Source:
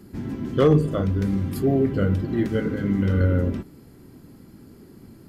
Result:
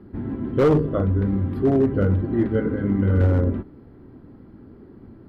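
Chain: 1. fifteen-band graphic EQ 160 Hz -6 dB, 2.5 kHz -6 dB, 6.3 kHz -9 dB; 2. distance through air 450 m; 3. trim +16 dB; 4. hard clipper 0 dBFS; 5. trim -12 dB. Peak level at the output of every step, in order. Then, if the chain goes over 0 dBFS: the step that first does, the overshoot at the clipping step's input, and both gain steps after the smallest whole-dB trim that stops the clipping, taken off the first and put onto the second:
-8.5 dBFS, -9.5 dBFS, +6.5 dBFS, 0.0 dBFS, -12.0 dBFS; step 3, 6.5 dB; step 3 +9 dB, step 5 -5 dB

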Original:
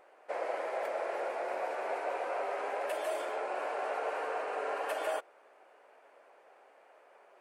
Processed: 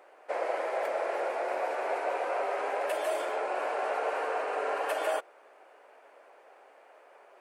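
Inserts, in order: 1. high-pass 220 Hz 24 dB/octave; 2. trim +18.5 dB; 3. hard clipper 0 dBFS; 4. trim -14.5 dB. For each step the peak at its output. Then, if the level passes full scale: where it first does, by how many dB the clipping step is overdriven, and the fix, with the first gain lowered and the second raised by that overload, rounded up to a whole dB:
-22.5 dBFS, -4.0 dBFS, -4.0 dBFS, -18.5 dBFS; nothing clips

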